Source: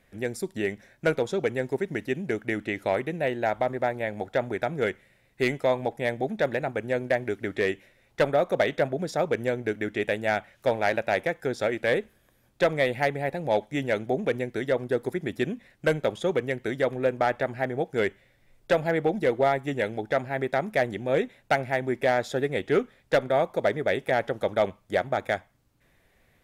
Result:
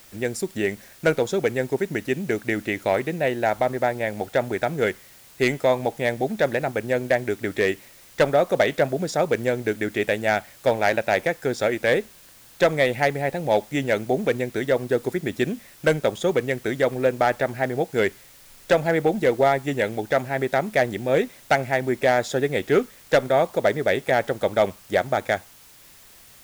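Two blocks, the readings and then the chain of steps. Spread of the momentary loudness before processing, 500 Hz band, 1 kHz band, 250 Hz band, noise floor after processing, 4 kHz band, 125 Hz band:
5 LU, +4.0 dB, +4.0 dB, +4.0 dB, −50 dBFS, +5.0 dB, +4.0 dB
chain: parametric band 6,900 Hz +5 dB
background noise white −54 dBFS
level +4 dB

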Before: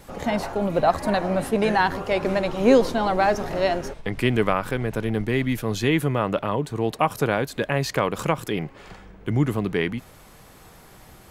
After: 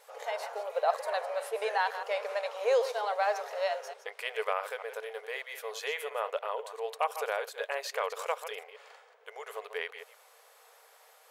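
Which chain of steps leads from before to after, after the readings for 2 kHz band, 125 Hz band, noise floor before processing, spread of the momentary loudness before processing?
−8.0 dB, below −40 dB, −49 dBFS, 6 LU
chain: delay that plays each chunk backwards 127 ms, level −10.5 dB
linear-phase brick-wall high-pass 420 Hz
level −8.5 dB

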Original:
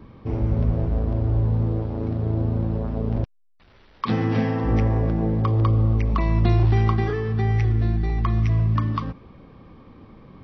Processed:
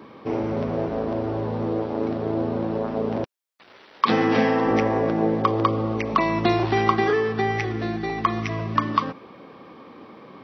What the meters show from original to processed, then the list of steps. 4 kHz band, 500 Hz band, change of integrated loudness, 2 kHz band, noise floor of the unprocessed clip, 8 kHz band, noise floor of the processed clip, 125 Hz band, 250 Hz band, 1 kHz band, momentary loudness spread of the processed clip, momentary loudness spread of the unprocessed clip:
+8.0 dB, +6.5 dB, −1.0 dB, +8.0 dB, −53 dBFS, can't be measured, −50 dBFS, −10.5 dB, +2.0 dB, +8.0 dB, 7 LU, 7 LU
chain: high-pass filter 330 Hz 12 dB per octave
level +8 dB

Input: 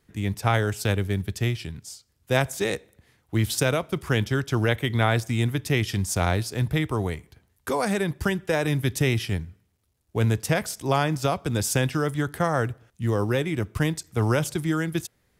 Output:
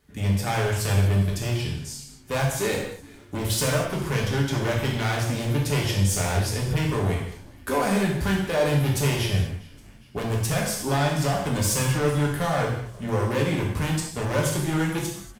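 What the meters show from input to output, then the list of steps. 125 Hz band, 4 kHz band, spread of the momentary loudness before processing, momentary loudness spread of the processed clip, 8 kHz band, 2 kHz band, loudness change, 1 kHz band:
+1.5 dB, +2.0 dB, 8 LU, 8 LU, +3.5 dB, −1.0 dB, +1.0 dB, +0.5 dB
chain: hard clipping −24 dBFS, distortion −7 dB
echo with shifted repeats 408 ms, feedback 55%, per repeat −120 Hz, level −23.5 dB
reverb whose tail is shaped and stops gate 270 ms falling, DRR −2.5 dB

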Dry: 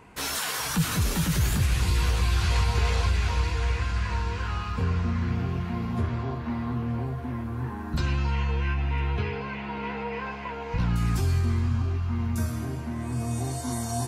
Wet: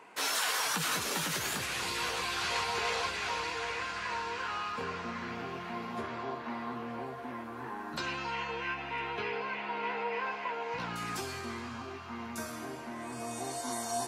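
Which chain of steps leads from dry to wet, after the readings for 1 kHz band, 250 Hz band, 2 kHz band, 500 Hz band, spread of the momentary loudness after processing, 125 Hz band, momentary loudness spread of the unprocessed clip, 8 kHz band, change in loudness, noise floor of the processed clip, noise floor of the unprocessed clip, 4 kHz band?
0.0 dB, −11.0 dB, 0.0 dB, −2.5 dB, 10 LU, −23.0 dB, 8 LU, −2.5 dB, −7.0 dB, −42 dBFS, −35 dBFS, −0.5 dB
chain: high-pass filter 420 Hz 12 dB per octave
high-shelf EQ 10,000 Hz −7 dB

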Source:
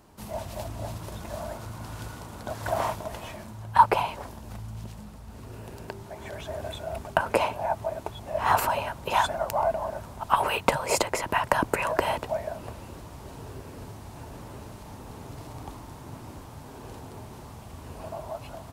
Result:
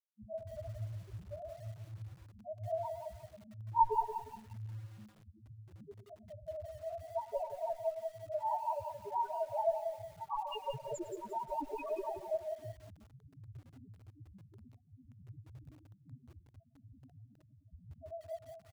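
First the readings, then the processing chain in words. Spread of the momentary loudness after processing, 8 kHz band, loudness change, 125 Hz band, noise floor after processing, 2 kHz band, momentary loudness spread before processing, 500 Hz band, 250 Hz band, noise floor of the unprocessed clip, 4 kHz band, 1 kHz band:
21 LU, −22.5 dB, −11.0 dB, −9.5 dB, −66 dBFS, −28.0 dB, 18 LU, −8.5 dB, −15.0 dB, −45 dBFS, −20.5 dB, −11.0 dB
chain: adaptive Wiener filter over 25 samples
in parallel at +1.5 dB: downward compressor 10 to 1, threshold −35 dBFS, peak gain reduction 23.5 dB
on the sum: dead-zone distortion −33.5 dBFS
notch comb filter 510 Hz
asymmetric clip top −27.5 dBFS
spectral peaks only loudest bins 1
on a send: repeating echo 104 ms, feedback 38%, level −17.5 dB
on the sum: feedback echo at a low word length 176 ms, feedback 35%, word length 10 bits, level −7.5 dB
level +4.5 dB

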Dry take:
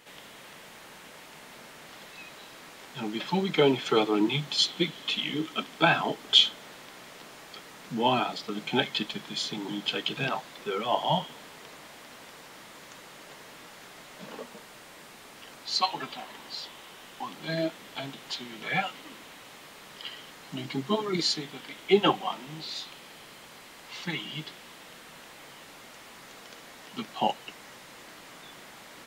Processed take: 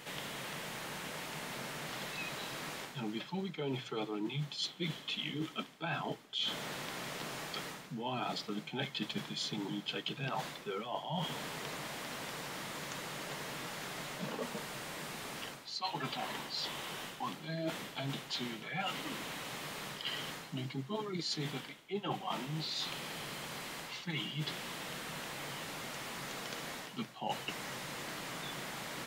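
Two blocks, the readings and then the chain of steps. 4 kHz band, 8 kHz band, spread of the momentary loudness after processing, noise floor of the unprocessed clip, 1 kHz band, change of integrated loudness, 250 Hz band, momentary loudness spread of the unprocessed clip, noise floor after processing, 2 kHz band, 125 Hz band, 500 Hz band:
−9.5 dB, −2.0 dB, 5 LU, −49 dBFS, −9.0 dB, −11.0 dB, −8.0 dB, 22 LU, −51 dBFS, −6.0 dB, −3.5 dB, −11.0 dB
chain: parametric band 140 Hz +7.5 dB 0.72 octaves
reversed playback
downward compressor 12 to 1, threshold −40 dBFS, peak gain reduction 26 dB
reversed playback
mains-hum notches 60/120 Hz
level +5 dB

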